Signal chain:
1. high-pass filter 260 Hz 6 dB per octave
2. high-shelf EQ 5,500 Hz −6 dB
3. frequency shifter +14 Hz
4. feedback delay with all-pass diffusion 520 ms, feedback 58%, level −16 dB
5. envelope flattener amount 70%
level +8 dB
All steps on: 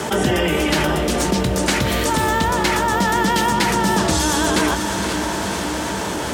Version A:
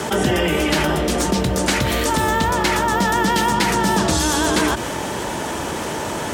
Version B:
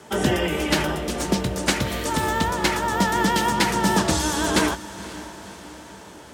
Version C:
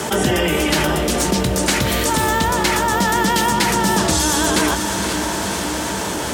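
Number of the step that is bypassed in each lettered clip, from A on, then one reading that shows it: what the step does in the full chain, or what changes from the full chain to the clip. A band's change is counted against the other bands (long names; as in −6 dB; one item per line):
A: 4, change in momentary loudness spread +2 LU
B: 5, change in crest factor +3.5 dB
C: 2, 8 kHz band +3.5 dB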